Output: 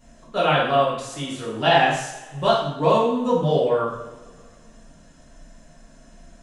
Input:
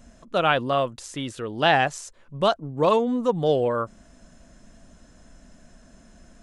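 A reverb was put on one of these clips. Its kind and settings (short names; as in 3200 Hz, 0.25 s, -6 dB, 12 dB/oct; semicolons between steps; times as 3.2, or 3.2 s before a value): two-slope reverb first 0.68 s, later 2 s, from -18 dB, DRR -9 dB; gain -7 dB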